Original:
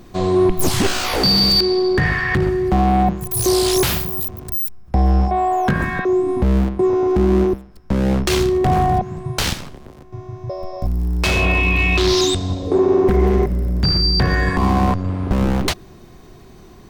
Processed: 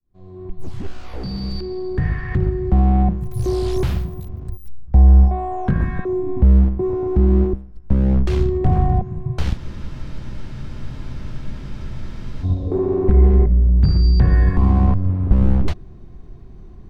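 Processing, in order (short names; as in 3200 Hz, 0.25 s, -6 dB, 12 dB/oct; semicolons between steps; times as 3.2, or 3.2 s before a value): opening faded in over 2.96 s; RIAA curve playback; spectral freeze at 9.6, 2.83 s; gain -9.5 dB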